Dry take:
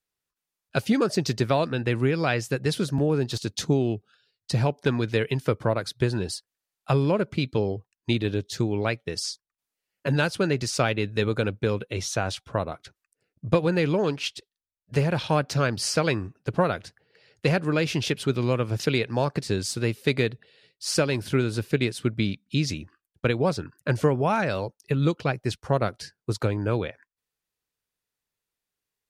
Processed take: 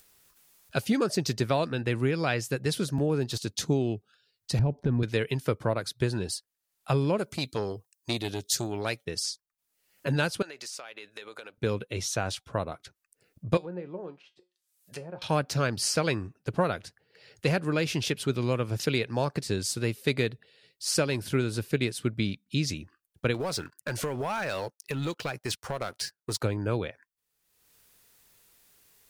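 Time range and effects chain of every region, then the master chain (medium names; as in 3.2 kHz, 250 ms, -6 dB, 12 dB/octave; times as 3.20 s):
4.59–5.03 s: median filter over 3 samples + tilt EQ -4.5 dB/octave + compression 3:1, threshold -21 dBFS
7.18–9.05 s: tone controls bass -4 dB, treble +13 dB + transformer saturation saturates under 820 Hz
10.42–11.58 s: high-pass 630 Hz + compression 10:1, threshold -35 dBFS
13.57–15.22 s: RIAA curve recording + low-pass that closes with the level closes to 750 Hz, closed at -25.5 dBFS + feedback comb 180 Hz, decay 0.21 s, mix 70%
23.34–26.41 s: bass shelf 460 Hz -10.5 dB + compression 5:1, threshold -29 dBFS + waveshaping leveller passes 2
whole clip: upward compressor, threshold -42 dBFS; treble shelf 7.7 kHz +8 dB; trim -3.5 dB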